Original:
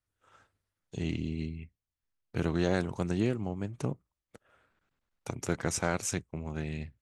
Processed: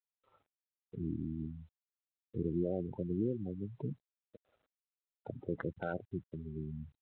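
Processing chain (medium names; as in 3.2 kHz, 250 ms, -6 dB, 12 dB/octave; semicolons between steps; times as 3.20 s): local Wiener filter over 25 samples; spectral gate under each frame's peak -10 dB strong; tilt EQ +2.5 dB/octave; peak limiter -26.5 dBFS, peak gain reduction 9.5 dB; trim +2 dB; G.726 32 kbps 8 kHz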